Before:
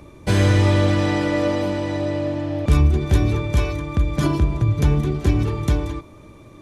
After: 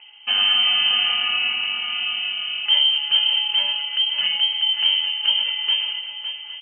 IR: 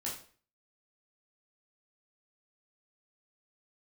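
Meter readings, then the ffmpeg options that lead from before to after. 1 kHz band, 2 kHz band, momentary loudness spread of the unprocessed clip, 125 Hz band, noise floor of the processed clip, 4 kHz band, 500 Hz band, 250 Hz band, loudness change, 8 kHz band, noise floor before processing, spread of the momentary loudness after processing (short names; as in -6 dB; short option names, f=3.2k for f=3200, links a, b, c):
-5.0 dB, +5.0 dB, 7 LU, under -40 dB, -37 dBFS, +21.0 dB, under -25 dB, under -30 dB, +2.0 dB, under -40 dB, -44 dBFS, 8 LU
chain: -filter_complex "[0:a]asplit=2[a][b];[b]aecho=0:1:130|559|811:0.119|0.355|0.178[c];[a][c]amix=inputs=2:normalize=0,lowpass=f=2.7k:t=q:w=0.5098,lowpass=f=2.7k:t=q:w=0.6013,lowpass=f=2.7k:t=q:w=0.9,lowpass=f=2.7k:t=q:w=2.563,afreqshift=-3200,volume=-3dB"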